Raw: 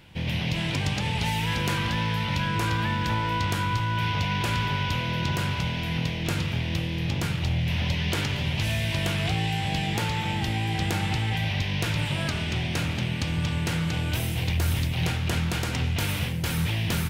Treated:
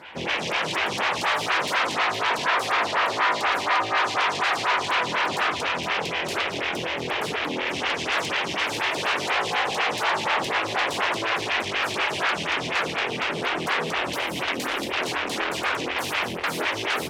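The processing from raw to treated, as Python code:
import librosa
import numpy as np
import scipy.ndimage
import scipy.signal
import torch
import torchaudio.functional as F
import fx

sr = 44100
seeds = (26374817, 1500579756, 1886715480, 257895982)

y = fx.fold_sine(x, sr, drive_db=14, ceiling_db=-14.0)
y = fx.bandpass_q(y, sr, hz=1500.0, q=0.61)
y = fx.stagger_phaser(y, sr, hz=4.1)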